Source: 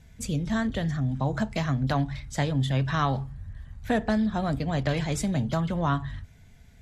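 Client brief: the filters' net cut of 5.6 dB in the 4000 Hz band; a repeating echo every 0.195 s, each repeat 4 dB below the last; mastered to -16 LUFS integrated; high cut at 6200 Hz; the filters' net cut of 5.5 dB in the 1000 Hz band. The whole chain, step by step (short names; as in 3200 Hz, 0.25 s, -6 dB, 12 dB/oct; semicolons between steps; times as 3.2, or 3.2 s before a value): LPF 6200 Hz; bell 1000 Hz -7.5 dB; bell 4000 Hz -6 dB; feedback echo 0.195 s, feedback 63%, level -4 dB; gain +11 dB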